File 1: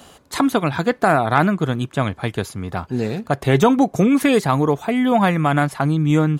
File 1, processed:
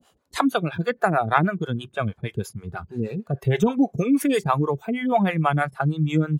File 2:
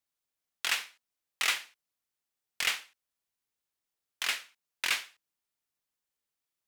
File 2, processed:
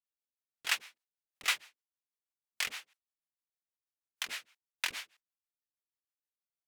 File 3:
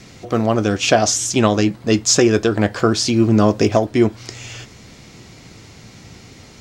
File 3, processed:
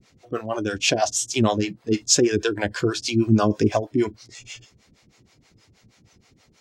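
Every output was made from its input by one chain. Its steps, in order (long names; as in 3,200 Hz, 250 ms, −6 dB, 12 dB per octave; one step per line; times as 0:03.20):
noise reduction from a noise print of the clip's start 12 dB
two-band tremolo in antiphase 6.3 Hz, depth 100%, crossover 430 Hz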